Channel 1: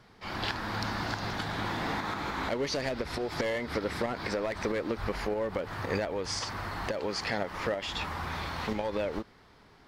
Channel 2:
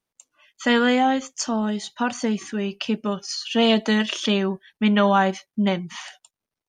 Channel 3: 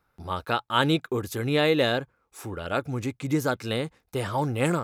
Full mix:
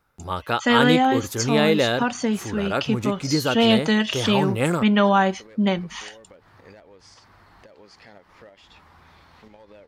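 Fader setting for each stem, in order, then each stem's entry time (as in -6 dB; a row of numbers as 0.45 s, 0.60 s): -16.5 dB, +0.5 dB, +2.5 dB; 0.75 s, 0.00 s, 0.00 s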